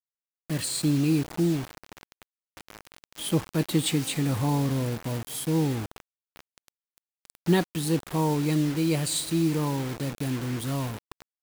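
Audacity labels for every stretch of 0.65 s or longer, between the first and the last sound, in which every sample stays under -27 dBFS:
1.610000	3.220000	silence
5.820000	7.480000	silence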